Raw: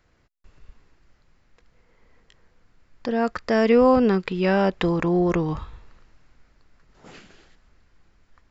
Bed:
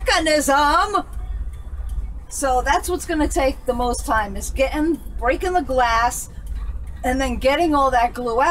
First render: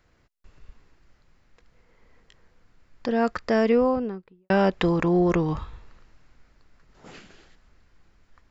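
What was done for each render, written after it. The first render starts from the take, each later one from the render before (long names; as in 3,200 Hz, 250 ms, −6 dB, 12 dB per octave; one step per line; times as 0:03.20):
0:03.29–0:04.50: fade out and dull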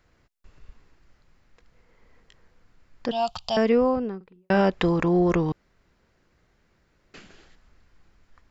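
0:03.11–0:03.57: drawn EQ curve 160 Hz 0 dB, 290 Hz −22 dB, 470 Hz −20 dB, 760 Hz +8 dB, 1,200 Hz −7 dB, 1,900 Hz −23 dB, 3,000 Hz +14 dB, 5,800 Hz +5 dB
0:04.16–0:04.61: double-tracking delay 45 ms −11.5 dB
0:05.52–0:07.14: fill with room tone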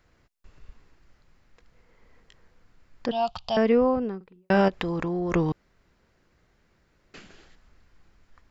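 0:03.06–0:04.02: high-frequency loss of the air 120 metres
0:04.68–0:05.32: downward compressor, threshold −25 dBFS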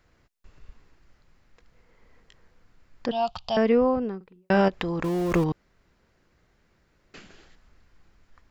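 0:05.04–0:05.44: converter with a step at zero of −31.5 dBFS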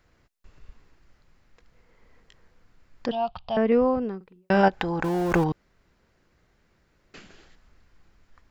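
0:03.15–0:03.72: high-frequency loss of the air 310 metres
0:04.63–0:05.48: hollow resonant body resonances 820/1,500 Hz, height 12 dB, ringing for 25 ms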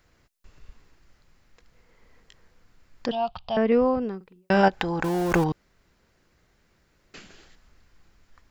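high-shelf EQ 3,700 Hz +6 dB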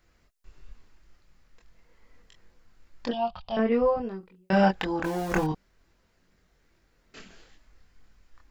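multi-voice chorus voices 6, 0.29 Hz, delay 24 ms, depth 3.2 ms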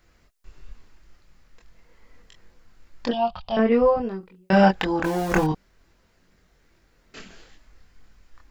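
level +5 dB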